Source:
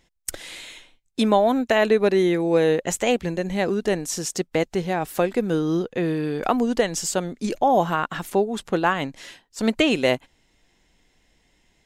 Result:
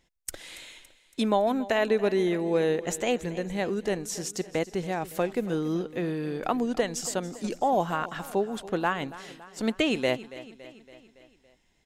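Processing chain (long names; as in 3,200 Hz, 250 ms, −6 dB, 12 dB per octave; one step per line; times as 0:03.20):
repeating echo 281 ms, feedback 58%, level −17 dB
level −6 dB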